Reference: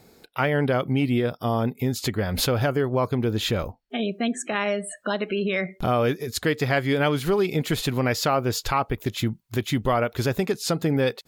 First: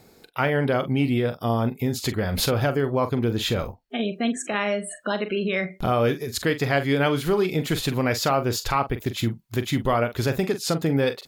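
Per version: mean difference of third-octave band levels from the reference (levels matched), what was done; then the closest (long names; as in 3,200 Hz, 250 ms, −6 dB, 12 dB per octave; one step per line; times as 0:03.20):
1.5 dB: double-tracking delay 43 ms −11 dB
reversed playback
upward compression, threshold −41 dBFS
reversed playback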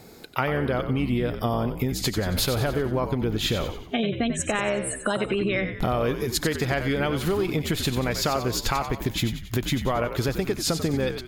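6.5 dB: downward compressor, threshold −28 dBFS, peak gain reduction 10.5 dB
echo with shifted repeats 92 ms, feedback 50%, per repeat −74 Hz, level −9 dB
level +6 dB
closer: first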